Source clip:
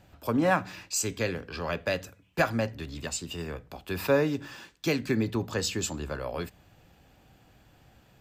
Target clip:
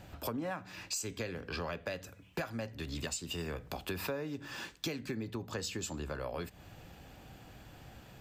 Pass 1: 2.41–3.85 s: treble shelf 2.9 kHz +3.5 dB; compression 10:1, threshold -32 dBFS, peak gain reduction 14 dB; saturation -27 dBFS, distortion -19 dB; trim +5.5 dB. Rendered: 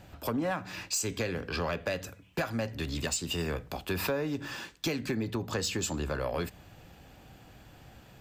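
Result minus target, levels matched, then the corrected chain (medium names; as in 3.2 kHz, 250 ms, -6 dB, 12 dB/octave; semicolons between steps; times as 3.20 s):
compression: peak gain reduction -7.5 dB
2.41–3.85 s: treble shelf 2.9 kHz +3.5 dB; compression 10:1, threshold -40.5 dBFS, peak gain reduction 21.5 dB; saturation -27 dBFS, distortion -31 dB; trim +5.5 dB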